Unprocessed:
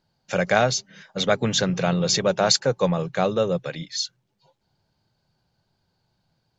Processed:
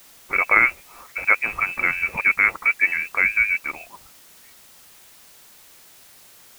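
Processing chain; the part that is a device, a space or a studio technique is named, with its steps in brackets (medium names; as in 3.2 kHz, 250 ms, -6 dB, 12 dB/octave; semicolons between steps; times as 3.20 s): scrambled radio voice (band-pass 390–2900 Hz; frequency inversion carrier 2.8 kHz; white noise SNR 25 dB); trim +4 dB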